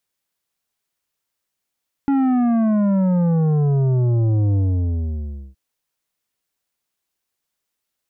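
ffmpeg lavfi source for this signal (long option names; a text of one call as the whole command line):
ffmpeg -f lavfi -i "aevalsrc='0.168*clip((3.47-t)/1,0,1)*tanh(2.99*sin(2*PI*280*3.47/log(65/280)*(exp(log(65/280)*t/3.47)-1)))/tanh(2.99)':duration=3.47:sample_rate=44100" out.wav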